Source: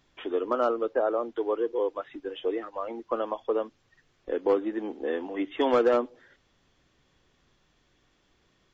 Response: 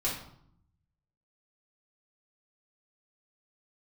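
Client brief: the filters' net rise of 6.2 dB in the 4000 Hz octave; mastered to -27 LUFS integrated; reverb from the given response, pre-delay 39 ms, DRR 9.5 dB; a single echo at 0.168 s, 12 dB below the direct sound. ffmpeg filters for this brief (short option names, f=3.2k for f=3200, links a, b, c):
-filter_complex "[0:a]equalizer=f=4k:t=o:g=8.5,aecho=1:1:168:0.251,asplit=2[a][b];[1:a]atrim=start_sample=2205,adelay=39[c];[b][c]afir=irnorm=-1:irlink=0,volume=-16dB[d];[a][d]amix=inputs=2:normalize=0,volume=1dB"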